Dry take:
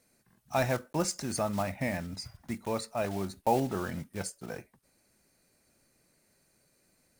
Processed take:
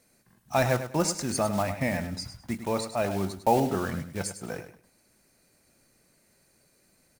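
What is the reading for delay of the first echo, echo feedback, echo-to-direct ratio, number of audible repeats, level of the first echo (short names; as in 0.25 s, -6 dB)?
0.102 s, 24%, -10.0 dB, 2, -10.5 dB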